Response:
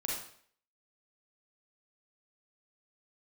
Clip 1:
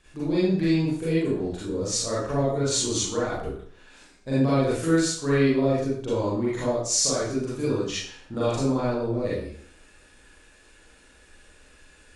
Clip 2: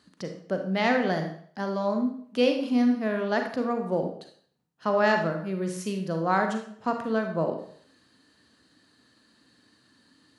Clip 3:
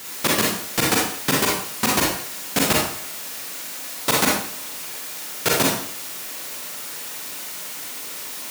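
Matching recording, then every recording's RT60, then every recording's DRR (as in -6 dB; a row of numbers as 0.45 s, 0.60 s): 3; 0.55 s, 0.55 s, 0.55 s; -10.0 dB, 4.0 dB, -3.5 dB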